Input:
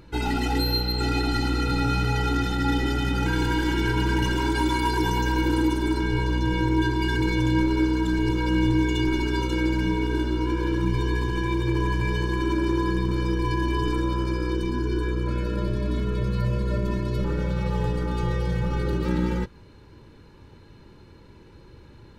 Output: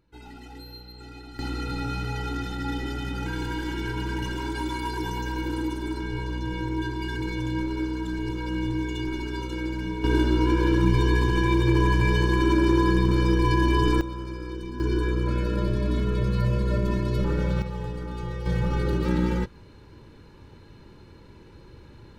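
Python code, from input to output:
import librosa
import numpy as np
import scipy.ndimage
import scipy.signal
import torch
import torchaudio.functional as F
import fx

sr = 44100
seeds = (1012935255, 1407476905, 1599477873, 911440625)

y = fx.gain(x, sr, db=fx.steps((0.0, -19.0), (1.39, -6.5), (10.04, 3.5), (14.01, -8.5), (14.8, 1.0), (17.62, -7.0), (18.46, 0.5)))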